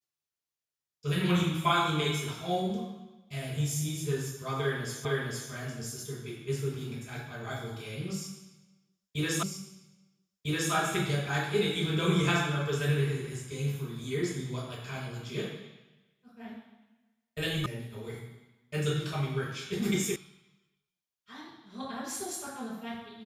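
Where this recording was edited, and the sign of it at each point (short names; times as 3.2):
5.05 repeat of the last 0.46 s
9.43 repeat of the last 1.3 s
17.66 sound cut off
20.16 sound cut off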